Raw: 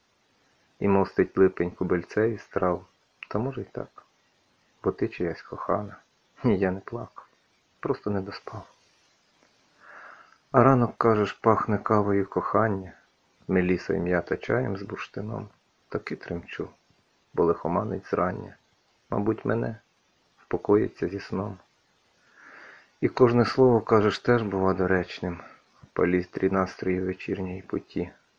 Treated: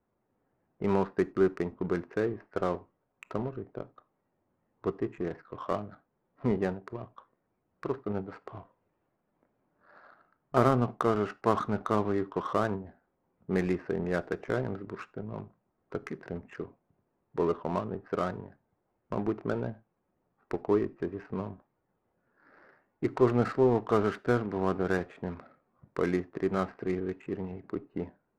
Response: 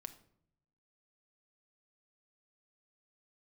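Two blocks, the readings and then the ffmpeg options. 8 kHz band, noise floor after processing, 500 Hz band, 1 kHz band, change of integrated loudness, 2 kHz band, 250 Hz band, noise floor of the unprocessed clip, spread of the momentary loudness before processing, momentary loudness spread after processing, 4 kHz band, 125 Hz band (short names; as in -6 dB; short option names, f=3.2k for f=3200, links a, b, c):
n/a, -79 dBFS, -5.5 dB, -5.5 dB, -5.5 dB, -7.0 dB, -5.0 dB, -68 dBFS, 16 LU, 16 LU, -7.5 dB, -5.5 dB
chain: -filter_complex "[0:a]lowpass=2.7k,adynamicsmooth=sensitivity=4.5:basefreq=910,asplit=2[a][b];[1:a]atrim=start_sample=2205,afade=t=out:st=0.15:d=0.01,atrim=end_sample=7056[c];[b][c]afir=irnorm=-1:irlink=0,volume=-0.5dB[d];[a][d]amix=inputs=2:normalize=0,volume=-9dB"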